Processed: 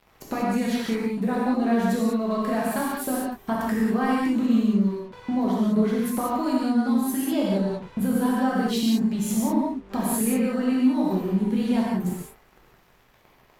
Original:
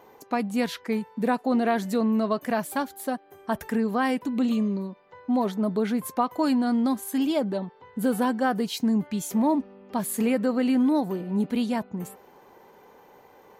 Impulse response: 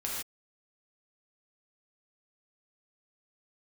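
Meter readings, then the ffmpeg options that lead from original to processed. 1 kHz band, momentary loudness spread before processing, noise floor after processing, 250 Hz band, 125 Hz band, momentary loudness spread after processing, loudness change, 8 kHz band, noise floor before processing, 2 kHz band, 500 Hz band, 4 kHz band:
0.0 dB, 9 LU, -58 dBFS, +2.5 dB, +5.0 dB, 7 LU, +2.0 dB, +4.0 dB, -54 dBFS, +0.5 dB, 0.0 dB, +1.5 dB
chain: -filter_complex "[0:a]aeval=exprs='sgn(val(0))*max(abs(val(0))-0.00473,0)':c=same,lowshelf=f=160:g=9,acompressor=threshold=0.0141:ratio=4[s0];[1:a]atrim=start_sample=2205,asetrate=35280,aresample=44100[s1];[s0][s1]afir=irnorm=-1:irlink=0,volume=2.66"

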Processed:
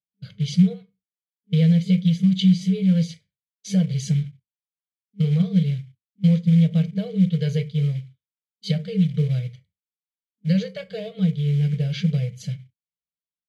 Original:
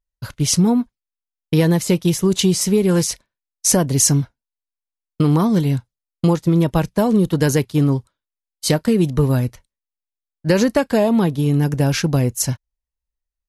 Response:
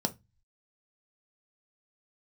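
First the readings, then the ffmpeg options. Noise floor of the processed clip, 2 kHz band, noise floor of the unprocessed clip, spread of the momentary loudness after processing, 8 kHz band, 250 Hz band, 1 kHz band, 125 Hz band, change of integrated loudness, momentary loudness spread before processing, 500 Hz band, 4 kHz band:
under -85 dBFS, -12.0 dB, under -85 dBFS, 14 LU, under -20 dB, -3.5 dB, under -25 dB, -1.5 dB, -4.0 dB, 8 LU, -14.0 dB, -8.0 dB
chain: -filter_complex "[1:a]atrim=start_sample=2205,atrim=end_sample=6615,asetrate=36603,aresample=44100[s0];[0:a][s0]afir=irnorm=-1:irlink=0,afftfilt=real='re*(1-between(b*sr/4096,200,430))':imag='im*(1-between(b*sr/4096,200,430))':win_size=4096:overlap=0.75,acrusher=bits=8:mode=log:mix=0:aa=0.000001,asplit=3[s1][s2][s3];[s1]bandpass=f=270:t=q:w=8,volume=1[s4];[s2]bandpass=f=2290:t=q:w=8,volume=0.501[s5];[s3]bandpass=f=3010:t=q:w=8,volume=0.355[s6];[s4][s5][s6]amix=inputs=3:normalize=0"

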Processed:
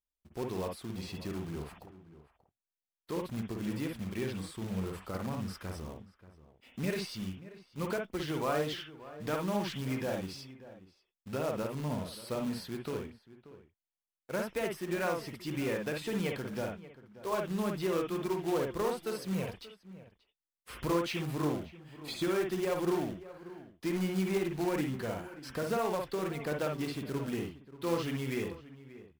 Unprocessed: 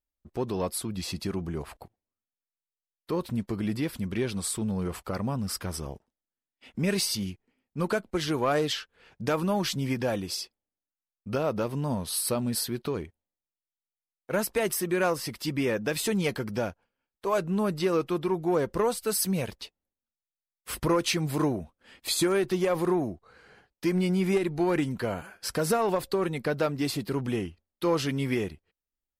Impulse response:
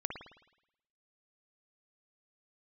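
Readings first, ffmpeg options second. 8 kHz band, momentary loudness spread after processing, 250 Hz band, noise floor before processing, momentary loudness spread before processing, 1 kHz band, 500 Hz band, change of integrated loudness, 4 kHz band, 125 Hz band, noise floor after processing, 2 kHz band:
-14.0 dB, 16 LU, -6.0 dB, under -85 dBFS, 10 LU, -6.0 dB, -6.0 dB, -6.5 dB, -9.0 dB, -6.0 dB, under -85 dBFS, -5.5 dB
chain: -filter_complex "[0:a]acrossover=split=4300[s0][s1];[s1]acompressor=threshold=0.00562:ratio=4:attack=1:release=60[s2];[s0][s2]amix=inputs=2:normalize=0,acrusher=bits=3:mode=log:mix=0:aa=0.000001,asplit=2[s3][s4];[s4]adelay=583.1,volume=0.158,highshelf=f=4000:g=-13.1[s5];[s3][s5]amix=inputs=2:normalize=0[s6];[1:a]atrim=start_sample=2205,atrim=end_sample=3969[s7];[s6][s7]afir=irnorm=-1:irlink=0,volume=0.447"

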